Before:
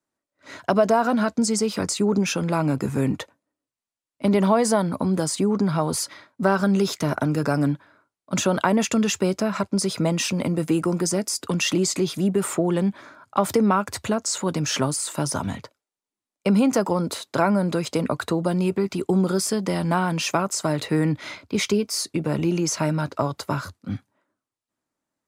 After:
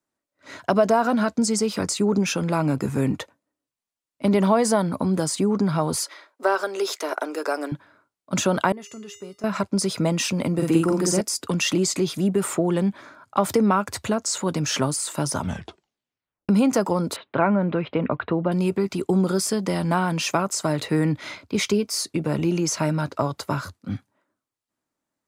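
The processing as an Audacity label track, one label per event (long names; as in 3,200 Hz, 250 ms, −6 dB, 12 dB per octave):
6.040000	7.720000	Butterworth high-pass 350 Hz
8.720000	9.440000	tuned comb filter 410 Hz, decay 0.38 s, harmonics odd, mix 90%
10.540000	11.210000	double-tracking delay 49 ms −2 dB
15.390000	15.390000	tape stop 1.10 s
17.160000	18.520000	Butterworth low-pass 3,100 Hz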